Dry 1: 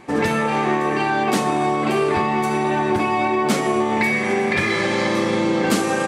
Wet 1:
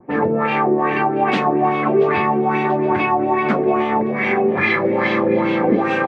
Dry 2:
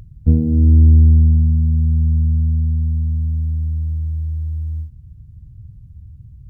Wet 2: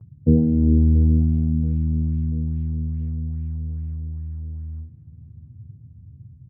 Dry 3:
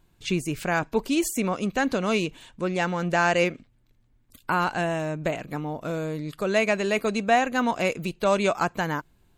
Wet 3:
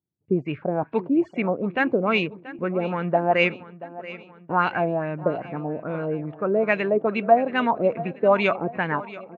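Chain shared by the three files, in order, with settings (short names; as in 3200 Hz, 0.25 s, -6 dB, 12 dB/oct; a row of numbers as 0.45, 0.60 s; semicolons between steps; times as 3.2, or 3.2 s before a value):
HPF 97 Hz 24 dB/oct; low-pass opened by the level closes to 430 Hz, open at -16.5 dBFS; gate with hold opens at -42 dBFS; high shelf 12000 Hz -9.5 dB; notch 3000 Hz, Q 27; LFO low-pass sine 2.4 Hz 430–2900 Hz; on a send: feedback echo 0.682 s, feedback 54%, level -17 dB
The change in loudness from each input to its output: +2.0, -6.0, +2.0 LU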